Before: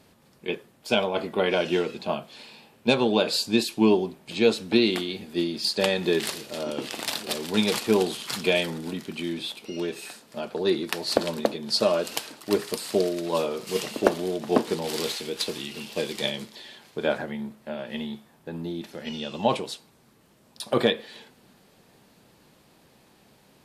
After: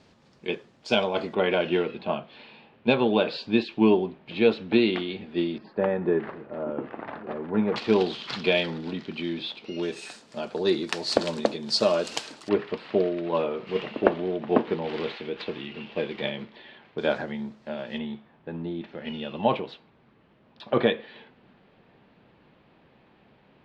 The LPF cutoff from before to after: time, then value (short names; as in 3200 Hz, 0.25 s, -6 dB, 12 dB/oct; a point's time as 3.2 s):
LPF 24 dB/oct
6400 Hz
from 1.35 s 3300 Hz
from 5.58 s 1600 Hz
from 7.76 s 4400 Hz
from 9.83 s 7800 Hz
from 12.49 s 2900 Hz
from 16.98 s 6000 Hz
from 17.98 s 3100 Hz